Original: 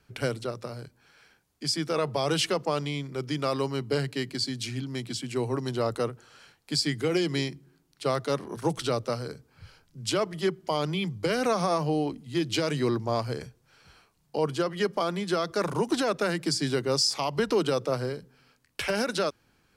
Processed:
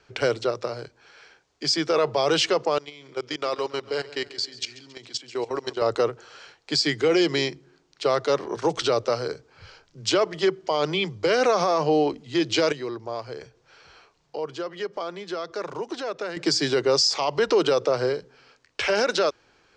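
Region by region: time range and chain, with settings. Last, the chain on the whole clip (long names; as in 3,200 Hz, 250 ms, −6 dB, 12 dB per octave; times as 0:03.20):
0:02.78–0:05.82: low-shelf EQ 250 Hz −10.5 dB + output level in coarse steps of 17 dB + repeating echo 137 ms, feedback 53%, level −17.5 dB
0:12.72–0:16.37: downward compressor 1.5 to 1, threshold −56 dBFS + parametric band 11,000 Hz −3 dB 1.5 octaves
whole clip: Butterworth low-pass 7,000 Hz 36 dB per octave; low shelf with overshoot 300 Hz −8 dB, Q 1.5; brickwall limiter −19.5 dBFS; level +7.5 dB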